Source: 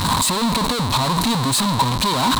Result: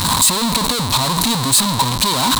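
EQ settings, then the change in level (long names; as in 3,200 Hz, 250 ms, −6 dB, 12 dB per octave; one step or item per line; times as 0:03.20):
high-shelf EQ 4,100 Hz +9.5 dB
0.0 dB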